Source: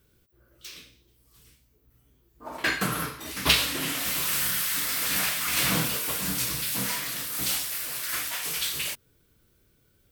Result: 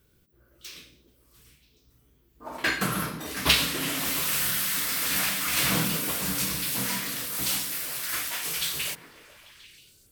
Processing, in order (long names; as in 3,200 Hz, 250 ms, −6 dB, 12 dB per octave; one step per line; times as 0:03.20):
echo through a band-pass that steps 140 ms, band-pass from 200 Hz, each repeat 0.7 octaves, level −3.5 dB